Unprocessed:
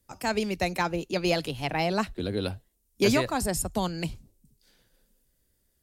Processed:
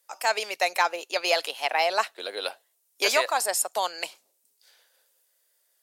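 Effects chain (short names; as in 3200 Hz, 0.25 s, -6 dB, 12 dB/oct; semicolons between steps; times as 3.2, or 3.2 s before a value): HPF 580 Hz 24 dB/oct; gain +5.5 dB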